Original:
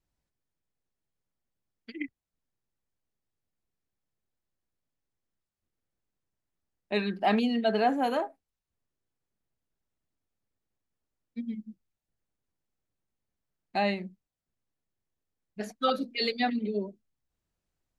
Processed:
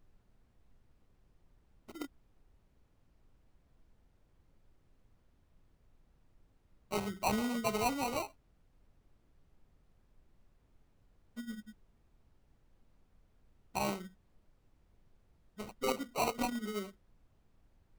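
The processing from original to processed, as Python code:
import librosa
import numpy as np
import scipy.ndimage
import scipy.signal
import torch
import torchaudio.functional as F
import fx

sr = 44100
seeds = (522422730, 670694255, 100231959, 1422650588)

y = fx.peak_eq(x, sr, hz=5400.0, db=10.0, octaves=1.2)
y = fx.sample_hold(y, sr, seeds[0], rate_hz=1700.0, jitter_pct=0)
y = fx.dmg_noise_colour(y, sr, seeds[1], colour='brown', level_db=-57.0)
y = y * librosa.db_to_amplitude(-8.0)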